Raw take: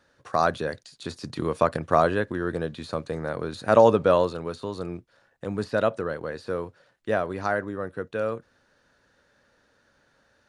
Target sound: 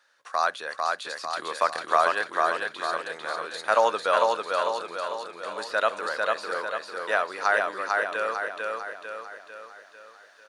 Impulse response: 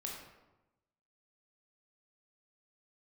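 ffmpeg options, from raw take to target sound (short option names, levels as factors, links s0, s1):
-af "aecho=1:1:448|896|1344|1792|2240|2688|3136:0.708|0.354|0.177|0.0885|0.0442|0.0221|0.0111,dynaudnorm=f=450:g=5:m=2,highpass=1000,volume=1.26"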